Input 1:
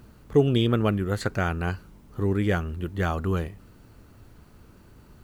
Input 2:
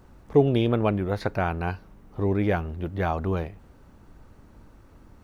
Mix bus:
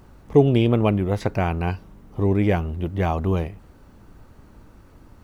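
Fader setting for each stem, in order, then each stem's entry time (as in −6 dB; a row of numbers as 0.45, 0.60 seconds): −6.5, +2.5 decibels; 0.00, 0.00 seconds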